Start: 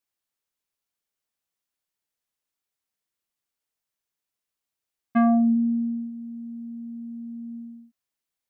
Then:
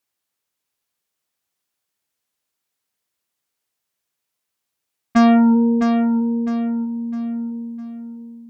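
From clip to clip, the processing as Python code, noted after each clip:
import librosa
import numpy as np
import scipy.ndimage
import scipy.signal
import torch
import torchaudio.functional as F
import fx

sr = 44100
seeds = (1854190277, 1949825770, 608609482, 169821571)

y = fx.cheby_harmonics(x, sr, harmonics=(6,), levels_db=(-17,), full_scale_db=-13.0)
y = scipy.signal.sosfilt(scipy.signal.butter(2, 63.0, 'highpass', fs=sr, output='sos'), y)
y = fx.echo_feedback(y, sr, ms=657, feedback_pct=36, wet_db=-7.0)
y = y * 10.0 ** (6.5 / 20.0)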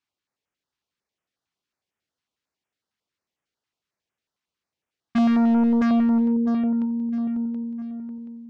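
y = np.clip(x, -10.0 ** (-16.0 / 20.0), 10.0 ** (-16.0 / 20.0))
y = fx.air_absorb(y, sr, metres=130.0)
y = fx.filter_held_notch(y, sr, hz=11.0, low_hz=540.0, high_hz=4200.0)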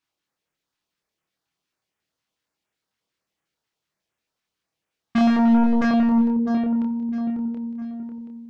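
y = fx.doubler(x, sr, ms=27.0, db=-3.0)
y = fx.room_shoebox(y, sr, seeds[0], volume_m3=2200.0, walls='furnished', distance_m=0.61)
y = y * 10.0 ** (2.5 / 20.0)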